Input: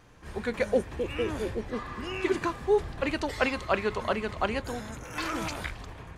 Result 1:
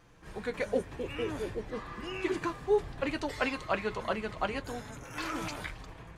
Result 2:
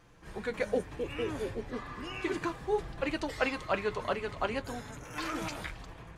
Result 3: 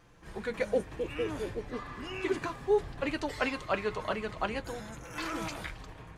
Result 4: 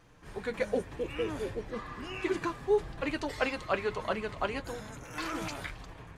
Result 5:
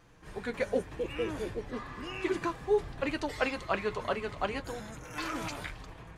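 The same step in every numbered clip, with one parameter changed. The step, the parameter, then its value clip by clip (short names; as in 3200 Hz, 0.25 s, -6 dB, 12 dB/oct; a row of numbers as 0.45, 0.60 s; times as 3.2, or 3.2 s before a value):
flange, rate: 0.49, 0.33, 0.2, 1.7, 0.83 Hz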